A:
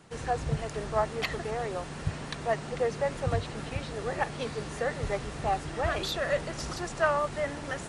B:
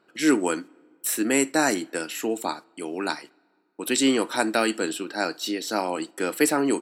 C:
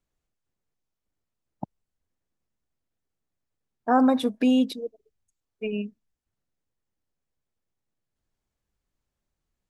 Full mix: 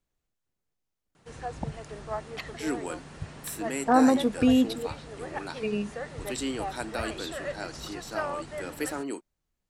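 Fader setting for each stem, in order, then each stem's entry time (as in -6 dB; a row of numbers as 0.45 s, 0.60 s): -6.5 dB, -11.5 dB, -0.5 dB; 1.15 s, 2.40 s, 0.00 s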